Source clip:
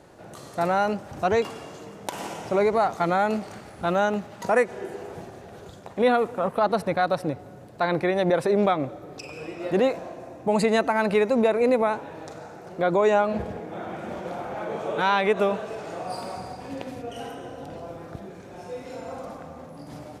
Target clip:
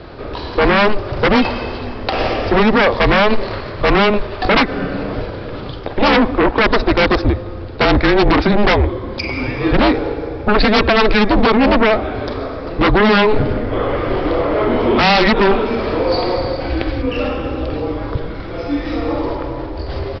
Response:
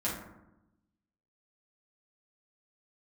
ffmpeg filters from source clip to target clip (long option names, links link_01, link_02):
-af "equalizer=frequency=370:width_type=o:width=0.33:gain=-12,afreqshift=-210,aresample=11025,aeval=exprs='0.335*sin(PI/2*4.47*val(0)/0.335)':channel_layout=same,aresample=44100,volume=1.5dB"